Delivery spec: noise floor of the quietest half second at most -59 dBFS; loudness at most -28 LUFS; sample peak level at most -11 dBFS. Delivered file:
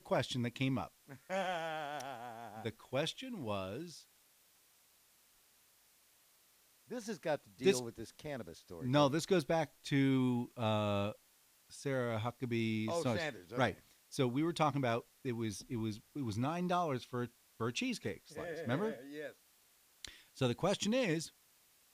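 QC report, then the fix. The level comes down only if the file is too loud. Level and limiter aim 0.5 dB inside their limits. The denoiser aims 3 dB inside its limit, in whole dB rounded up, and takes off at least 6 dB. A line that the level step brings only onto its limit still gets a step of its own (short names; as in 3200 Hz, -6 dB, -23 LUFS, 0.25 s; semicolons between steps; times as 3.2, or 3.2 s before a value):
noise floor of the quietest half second -69 dBFS: OK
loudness -37.5 LUFS: OK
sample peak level -16.0 dBFS: OK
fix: none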